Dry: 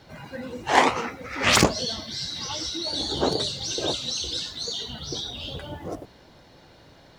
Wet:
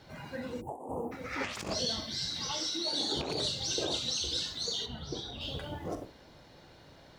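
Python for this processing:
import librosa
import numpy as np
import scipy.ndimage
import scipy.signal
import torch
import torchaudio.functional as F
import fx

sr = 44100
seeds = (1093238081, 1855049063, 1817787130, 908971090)

y = fx.rattle_buzz(x, sr, strikes_db=-28.0, level_db=-19.0)
y = fx.highpass(y, sr, hz=190.0, slope=12, at=(2.51, 3.17))
y = fx.room_early_taps(y, sr, ms=(41, 67), db=(-11.0, -14.5))
y = fx.over_compress(y, sr, threshold_db=-27.0, ratio=-1.0)
y = fx.cheby2_bandstop(y, sr, low_hz=1400.0, high_hz=5900.0, order=4, stop_db=40, at=(0.6, 1.11), fade=0.02)
y = fx.high_shelf(y, sr, hz=fx.line((4.85, 2500.0), (5.4, 3700.0)), db=-11.0, at=(4.85, 5.4), fade=0.02)
y = F.gain(torch.from_numpy(y), -6.5).numpy()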